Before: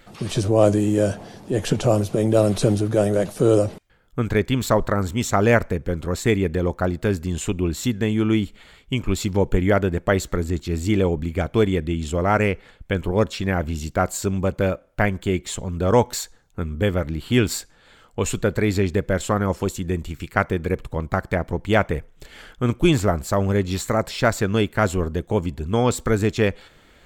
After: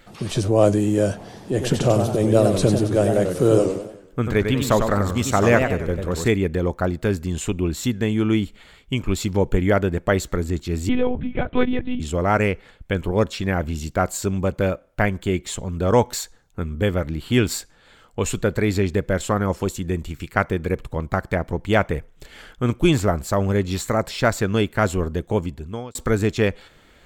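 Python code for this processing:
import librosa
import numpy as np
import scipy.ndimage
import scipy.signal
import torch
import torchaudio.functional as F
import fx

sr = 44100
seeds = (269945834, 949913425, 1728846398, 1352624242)

y = fx.echo_warbled(x, sr, ms=94, feedback_pct=45, rate_hz=2.8, cents=170, wet_db=-6.0, at=(1.17, 6.28))
y = fx.lpc_monotone(y, sr, seeds[0], pitch_hz=250.0, order=10, at=(10.89, 12.0))
y = fx.edit(y, sr, fx.fade_out_span(start_s=25.36, length_s=0.59), tone=tone)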